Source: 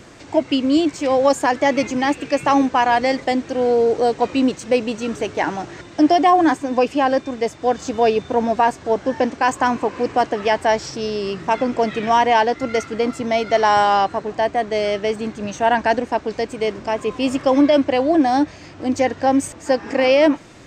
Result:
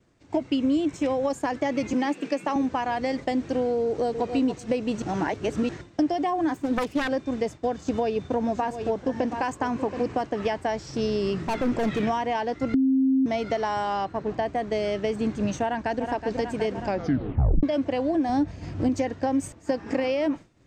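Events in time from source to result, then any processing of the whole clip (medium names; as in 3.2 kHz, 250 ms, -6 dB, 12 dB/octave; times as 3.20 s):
0.56–1.31 s: band-stop 4.6 kHz, Q 5.6
1.93–2.56 s: Chebyshev high-pass 180 Hz, order 4
3.86–4.31 s: echo throw 280 ms, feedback 15%, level -9.5 dB
5.02–5.69 s: reverse
6.54–7.09 s: self-modulated delay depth 0.5 ms
7.79–10.14 s: delay 725 ms -12.5 dB
11.43–12.03 s: overload inside the chain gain 20 dB
12.74–13.26 s: bleep 265 Hz -11 dBFS
14.05–14.46 s: distance through air 62 m
15.63–16.07 s: echo throw 370 ms, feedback 70%, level -11 dB
16.83 s: tape stop 0.80 s
18.29–18.89 s: bass shelf 220 Hz +10 dB
whole clip: compression 8:1, threshold -21 dBFS; bass shelf 290 Hz +10 dB; expander -25 dBFS; trim -4 dB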